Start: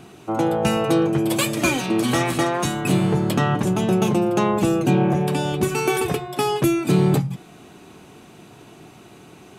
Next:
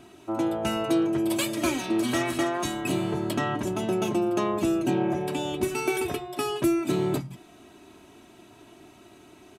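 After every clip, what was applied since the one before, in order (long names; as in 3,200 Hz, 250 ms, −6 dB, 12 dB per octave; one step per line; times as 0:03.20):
comb filter 3.1 ms, depth 61%
level −7.5 dB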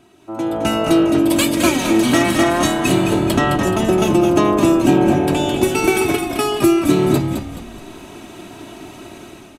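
automatic gain control gain up to 16 dB
on a send: echo with shifted repeats 213 ms, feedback 36%, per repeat −46 Hz, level −6.5 dB
on the sum: level −1.5 dB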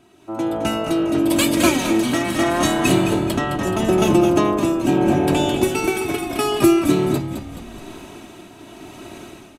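shaped tremolo triangle 0.79 Hz, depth 55%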